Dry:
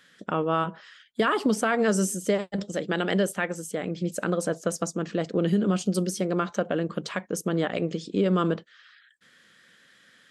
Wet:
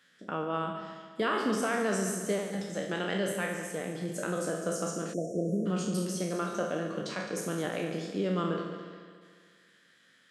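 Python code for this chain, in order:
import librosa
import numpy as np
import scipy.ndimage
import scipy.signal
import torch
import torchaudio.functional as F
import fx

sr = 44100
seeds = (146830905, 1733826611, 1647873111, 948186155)

p1 = fx.spec_trails(x, sr, decay_s=0.69)
p2 = scipy.signal.sosfilt(scipy.signal.butter(2, 100.0, 'highpass', fs=sr, output='sos'), p1)
p3 = p2 + fx.echo_heads(p2, sr, ms=71, heads='second and third', feedback_pct=52, wet_db=-12, dry=0)
p4 = fx.spec_erase(p3, sr, start_s=5.14, length_s=0.52, low_hz=750.0, high_hz=5300.0)
y = p4 * librosa.db_to_amplitude(-8.5)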